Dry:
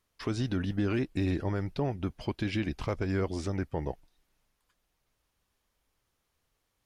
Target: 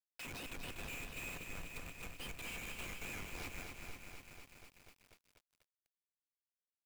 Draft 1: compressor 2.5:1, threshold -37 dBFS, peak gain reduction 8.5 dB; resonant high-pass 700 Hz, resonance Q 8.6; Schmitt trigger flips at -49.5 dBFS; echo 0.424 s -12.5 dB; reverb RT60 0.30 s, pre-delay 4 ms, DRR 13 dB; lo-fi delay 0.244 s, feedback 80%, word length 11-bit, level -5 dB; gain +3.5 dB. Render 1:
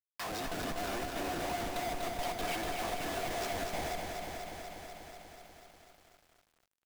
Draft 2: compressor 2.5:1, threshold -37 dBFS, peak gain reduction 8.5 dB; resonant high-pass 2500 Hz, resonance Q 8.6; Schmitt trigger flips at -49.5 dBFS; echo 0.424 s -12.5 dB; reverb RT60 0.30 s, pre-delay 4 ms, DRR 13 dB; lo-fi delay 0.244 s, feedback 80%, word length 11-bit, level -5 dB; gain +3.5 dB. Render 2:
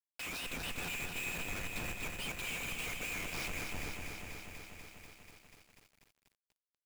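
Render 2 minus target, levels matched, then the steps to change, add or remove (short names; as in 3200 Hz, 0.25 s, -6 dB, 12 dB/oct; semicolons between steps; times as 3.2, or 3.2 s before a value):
compressor: peak gain reduction -5.5 dB
change: compressor 2.5:1, threshold -46 dBFS, peak gain reduction 13.5 dB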